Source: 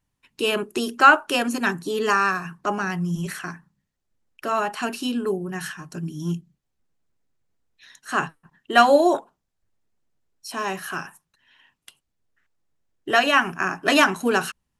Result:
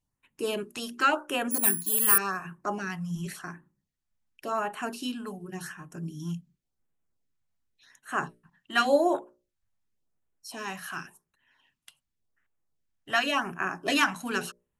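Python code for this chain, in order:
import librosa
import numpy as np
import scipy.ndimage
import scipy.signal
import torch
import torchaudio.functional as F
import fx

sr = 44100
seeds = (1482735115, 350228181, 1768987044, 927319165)

y = fx.hum_notches(x, sr, base_hz=60, count=10)
y = fx.resample_bad(y, sr, factor=4, down='filtered', up='zero_stuff', at=(1.51, 2.18))
y = fx.filter_lfo_notch(y, sr, shape='sine', hz=0.9, low_hz=350.0, high_hz=5200.0, q=1.0)
y = F.gain(torch.from_numpy(y), -5.5).numpy()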